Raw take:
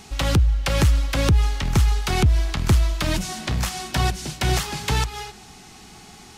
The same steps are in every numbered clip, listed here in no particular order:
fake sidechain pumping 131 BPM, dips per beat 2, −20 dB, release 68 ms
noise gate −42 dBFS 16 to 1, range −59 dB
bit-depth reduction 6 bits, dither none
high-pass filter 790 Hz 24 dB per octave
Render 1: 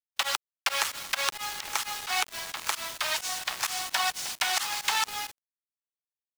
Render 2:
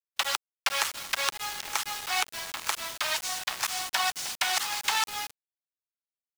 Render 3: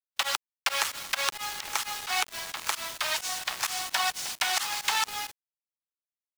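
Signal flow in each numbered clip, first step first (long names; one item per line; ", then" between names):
high-pass filter, then bit-depth reduction, then noise gate, then fake sidechain pumping
fake sidechain pumping, then high-pass filter, then bit-depth reduction, then noise gate
high-pass filter, then bit-depth reduction, then fake sidechain pumping, then noise gate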